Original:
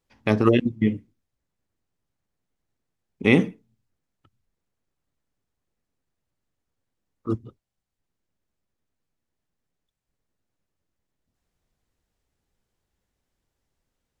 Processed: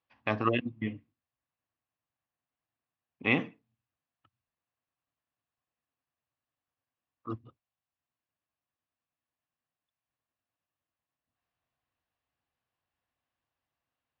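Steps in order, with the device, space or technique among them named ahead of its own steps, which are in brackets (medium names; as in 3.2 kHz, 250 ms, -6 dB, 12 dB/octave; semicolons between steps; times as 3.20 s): guitar cabinet (cabinet simulation 97–4600 Hz, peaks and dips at 190 Hz -9 dB, 400 Hz -8 dB, 710 Hz +6 dB, 1.1 kHz +9 dB, 1.7 kHz +5 dB, 2.7 kHz +7 dB); 0.52–3.31 s: low-pass 5.1 kHz; trim -9 dB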